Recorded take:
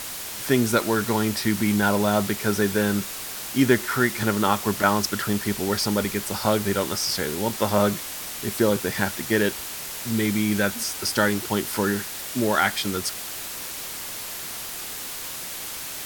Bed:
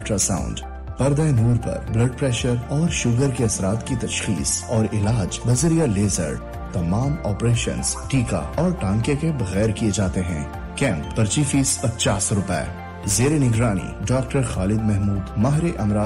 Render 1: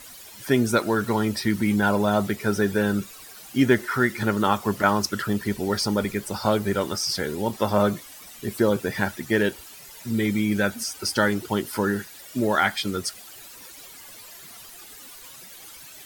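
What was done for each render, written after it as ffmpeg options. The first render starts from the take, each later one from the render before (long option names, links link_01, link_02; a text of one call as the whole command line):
ffmpeg -i in.wav -af "afftdn=noise_reduction=14:noise_floor=-34" out.wav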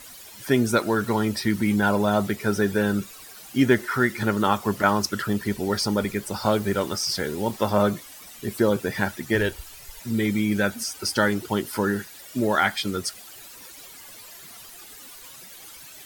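ffmpeg -i in.wav -filter_complex "[0:a]asettb=1/sr,asplit=3[link_01][link_02][link_03];[link_01]atrim=end=6.384[link_04];[link_02]atrim=start=6.38:end=7.71,asetpts=PTS-STARTPTS,afade=type=in:duration=0.004:curve=qsin,afade=type=out:start_time=1.326:duration=0.004:curve=qsin,acrusher=bits=8:dc=4:mix=0:aa=0.000001[link_05];[link_03]atrim=start=7.706[link_06];[link_04][link_05]acrossfade=duration=0.004:curve1=hsin:curve2=qsin[link_07];[link_07][link_06]acrossfade=duration=0.004:curve1=qsin:curve2=hsin,asplit=3[link_08][link_09][link_10];[link_08]afade=type=out:start_time=9.34:duration=0.02[link_11];[link_09]asubboost=boost=11.5:cutoff=58,afade=type=in:start_time=9.34:duration=0.02,afade=type=out:start_time=10:duration=0.02[link_12];[link_10]afade=type=in:start_time=10:duration=0.02[link_13];[link_11][link_12][link_13]amix=inputs=3:normalize=0" out.wav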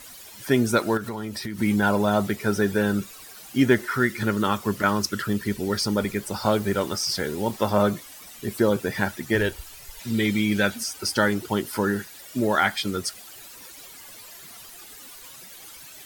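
ffmpeg -i in.wav -filter_complex "[0:a]asettb=1/sr,asplit=3[link_01][link_02][link_03];[link_01]atrim=end=0.974[link_04];[link_02]atrim=start=0.97:end=1.59,asetpts=PTS-STARTPTS,afade=type=in:duration=0.004:curve=qsin,afade=type=out:start_time=0.616:duration=0.004:curve=qsin,acompressor=threshold=-28dB:ratio=6:attack=3.2:release=140:knee=1:detection=peak[link_05];[link_03]atrim=start=1.586[link_06];[link_04][link_05]acrossfade=duration=0.004:curve1=hsin:curve2=qsin[link_07];[link_07][link_06]acrossfade=duration=0.004:curve1=qsin:curve2=hsin,asettb=1/sr,asplit=3[link_08][link_09][link_10];[link_08]atrim=end=3.914[link_11];[link_09]atrim=start=3.91:end=5.97,asetpts=PTS-STARTPTS,afade=type=in:duration=0.004:curve=qsin,afade=type=out:start_time=2.056:duration=0.004:curve=qsin,equalizer=frequency=770:width_type=o:width=0.77:gain=-6.5[link_12];[link_10]atrim=start=5.966[link_13];[link_11][link_12]acrossfade=duration=0.004:curve1=hsin:curve2=qsin[link_14];[link_14][link_13]acrossfade=duration=0.004:curve1=qsin:curve2=hsin,asettb=1/sr,asplit=3[link_15][link_16][link_17];[link_15]atrim=end=9.994[link_18];[link_16]atrim=start=9.99:end=10.78,asetpts=PTS-STARTPTS,afade=type=in:duration=0.004:curve=qsin,afade=type=out:start_time=0.786:duration=0.004:curve=qsin,equalizer=frequency=3300:width=1:gain=6.5[link_19];[link_17]atrim=start=10.776[link_20];[link_18][link_19]acrossfade=duration=0.004:curve1=hsin:curve2=qsin[link_21];[link_21][link_20]acrossfade=duration=0.004:curve1=qsin:curve2=hsin" out.wav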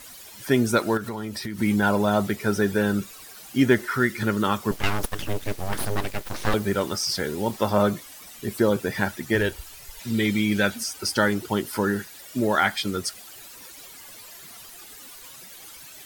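ffmpeg -i in.wav -filter_complex "[0:a]asettb=1/sr,asplit=3[link_01][link_02][link_03];[link_01]atrim=end=4.714[link_04];[link_02]atrim=start=4.71:end=6.54,asetpts=PTS-STARTPTS,afade=type=in:duration=0.004:curve=qsin,afade=type=out:start_time=1.826:duration=0.004:curve=qsin,aeval=exprs='abs(val(0))':channel_layout=same[link_05];[link_03]atrim=start=6.536[link_06];[link_04][link_05]acrossfade=duration=0.004:curve1=hsin:curve2=qsin[link_07];[link_07][link_06]acrossfade=duration=0.004:curve1=qsin:curve2=hsin" out.wav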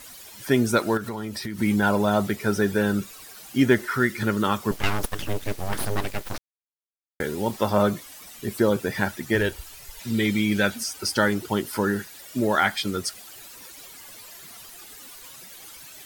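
ffmpeg -i in.wav -filter_complex "[0:a]asplit=3[link_01][link_02][link_03];[link_01]atrim=end=6.38,asetpts=PTS-STARTPTS,afade=type=out:start_time=6.376:duration=0.004:curve=hsin[link_04];[link_02]atrim=start=6.38:end=7.2,asetpts=PTS-STARTPTS,volume=0[link_05];[link_03]atrim=start=7.2,asetpts=PTS-STARTPTS,afade=type=in:duration=0.004:curve=hsin[link_06];[link_04][link_05][link_06]concat=n=3:v=0:a=1" out.wav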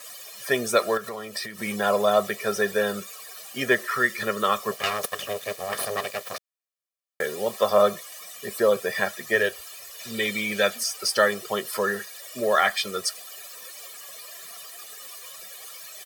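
ffmpeg -i in.wav -af "highpass=330,aecho=1:1:1.7:0.82" out.wav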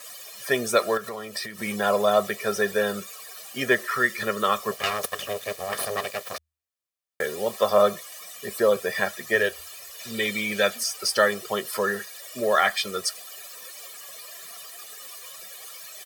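ffmpeg -i in.wav -af "equalizer=frequency=78:width=7.7:gain=10" out.wav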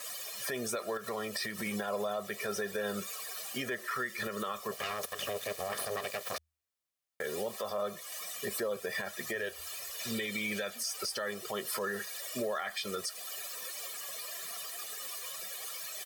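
ffmpeg -i in.wav -af "acompressor=threshold=-30dB:ratio=4,alimiter=level_in=1.5dB:limit=-24dB:level=0:latency=1:release=40,volume=-1.5dB" out.wav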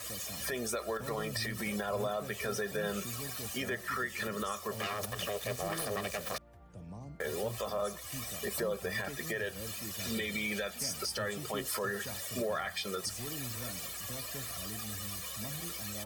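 ffmpeg -i in.wav -i bed.wav -filter_complex "[1:a]volume=-25.5dB[link_01];[0:a][link_01]amix=inputs=2:normalize=0" out.wav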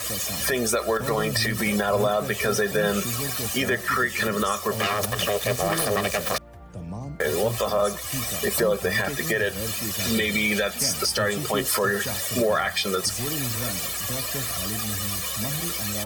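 ffmpeg -i in.wav -af "volume=12dB" out.wav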